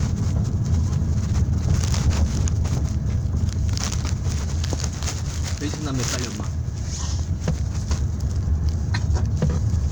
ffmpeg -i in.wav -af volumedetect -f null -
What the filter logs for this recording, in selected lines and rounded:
mean_volume: -22.0 dB
max_volume: -7.3 dB